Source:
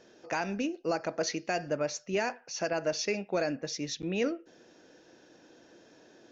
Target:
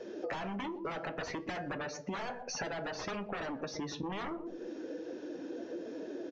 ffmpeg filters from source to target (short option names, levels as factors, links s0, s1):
-filter_complex "[0:a]aresample=16000,aeval=exprs='0.141*sin(PI/2*5.62*val(0)/0.141)':c=same,aresample=44100,lowpass=f=3400:p=1,asplit=2[s0][s1];[s1]adelay=122,lowpass=f=980:p=1,volume=0.282,asplit=2[s2][s3];[s3]adelay=122,lowpass=f=980:p=1,volume=0.36,asplit=2[s4][s5];[s5]adelay=122,lowpass=f=980:p=1,volume=0.36,asplit=2[s6][s7];[s7]adelay=122,lowpass=f=980:p=1,volume=0.36[s8];[s2][s4][s6][s8]amix=inputs=4:normalize=0[s9];[s0][s9]amix=inputs=2:normalize=0,afftdn=nr=15:nf=-30,lowshelf=f=230:g=-4.5,acrossover=split=740|2100[s10][s11][s12];[s10]acompressor=threshold=0.0631:ratio=4[s13];[s11]acompressor=threshold=0.0501:ratio=4[s14];[s12]acompressor=threshold=0.0158:ratio=4[s15];[s13][s14][s15]amix=inputs=3:normalize=0,flanger=delay=9.5:depth=2.8:regen=-70:speed=0.61:shape=triangular,acompressor=threshold=0.00708:ratio=12,volume=2.24"